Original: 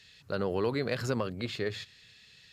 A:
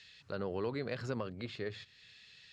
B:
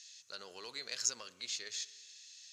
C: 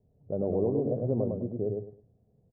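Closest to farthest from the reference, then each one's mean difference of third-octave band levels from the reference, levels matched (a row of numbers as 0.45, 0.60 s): A, B, C; 2.0, 9.5, 13.0 dB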